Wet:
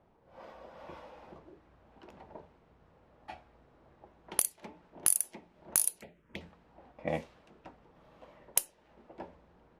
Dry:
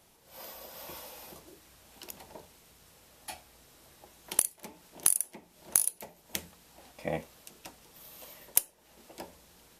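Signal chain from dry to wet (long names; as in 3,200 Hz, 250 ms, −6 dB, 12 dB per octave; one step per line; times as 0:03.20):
low-pass that shuts in the quiet parts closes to 1,100 Hz, open at −26 dBFS
0:06.01–0:06.41: phaser swept by the level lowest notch 590 Hz, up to 1,600 Hz, full sweep at −39.5 dBFS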